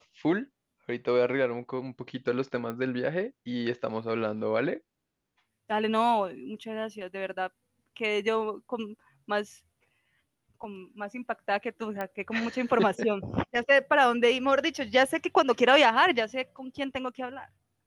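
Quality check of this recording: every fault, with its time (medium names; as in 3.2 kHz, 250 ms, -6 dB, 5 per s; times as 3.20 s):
2.70 s: pop -22 dBFS
12.01 s: pop -20 dBFS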